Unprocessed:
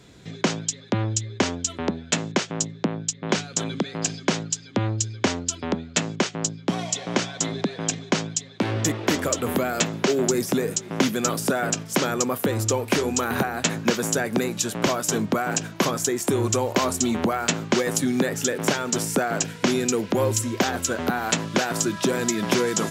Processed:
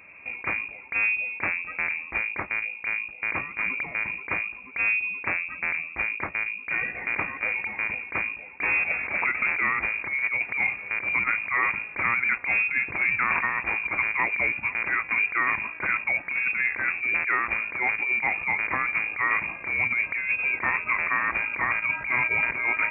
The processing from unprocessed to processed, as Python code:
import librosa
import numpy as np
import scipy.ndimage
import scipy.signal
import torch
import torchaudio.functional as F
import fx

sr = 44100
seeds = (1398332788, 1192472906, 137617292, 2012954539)

y = fx.over_compress(x, sr, threshold_db=-24.0, ratio=-0.5)
y = fx.freq_invert(y, sr, carrier_hz=2600)
y = scipy.signal.sosfilt(scipy.signal.butter(2, 45.0, 'highpass', fs=sr, output='sos'), y)